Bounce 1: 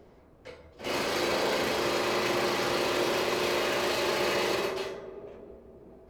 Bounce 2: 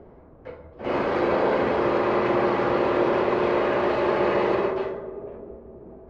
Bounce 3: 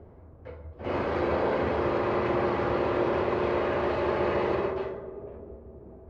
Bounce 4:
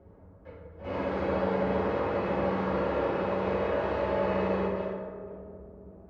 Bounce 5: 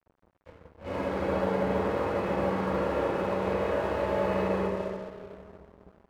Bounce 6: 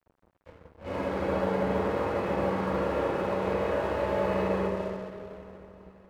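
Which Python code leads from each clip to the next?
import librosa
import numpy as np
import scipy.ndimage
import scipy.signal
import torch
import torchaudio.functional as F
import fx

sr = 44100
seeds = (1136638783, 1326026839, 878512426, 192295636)

y1 = scipy.signal.sosfilt(scipy.signal.butter(2, 1400.0, 'lowpass', fs=sr, output='sos'), x)
y1 = y1 * librosa.db_to_amplitude(7.5)
y2 = fx.peak_eq(y1, sr, hz=85.0, db=13.5, octaves=0.77)
y2 = y2 * librosa.db_to_amplitude(-5.0)
y3 = fx.rev_fdn(y2, sr, rt60_s=1.7, lf_ratio=0.8, hf_ratio=0.45, size_ms=32.0, drr_db=-4.0)
y3 = y3 * librosa.db_to_amplitude(-8.0)
y4 = np.sign(y3) * np.maximum(np.abs(y3) - 10.0 ** (-48.5 / 20.0), 0.0)
y4 = y4 * librosa.db_to_amplitude(1.0)
y5 = fx.echo_feedback(y4, sr, ms=483, feedback_pct=55, wet_db=-20)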